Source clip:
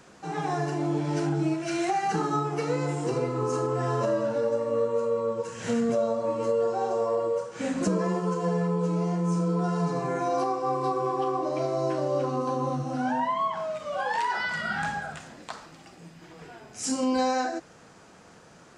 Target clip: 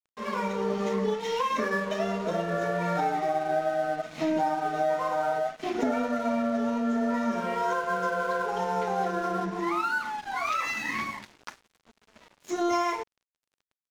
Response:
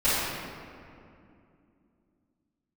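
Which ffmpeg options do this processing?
-af "aresample=11025,aresample=44100,aeval=exprs='sgn(val(0))*max(abs(val(0))-0.00668,0)':c=same,asetrate=59535,aresample=44100"

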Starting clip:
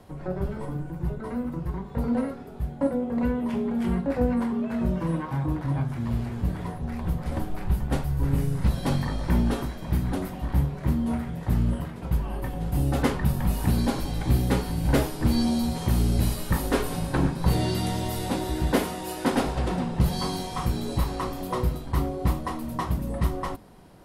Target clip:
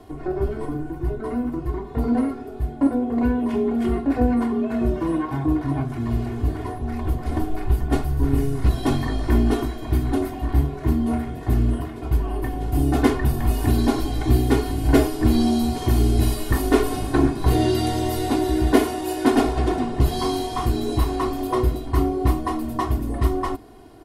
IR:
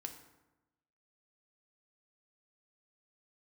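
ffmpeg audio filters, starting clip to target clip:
-af "equalizer=f=280:w=0.5:g=5.5,aecho=1:1:2.8:0.87"

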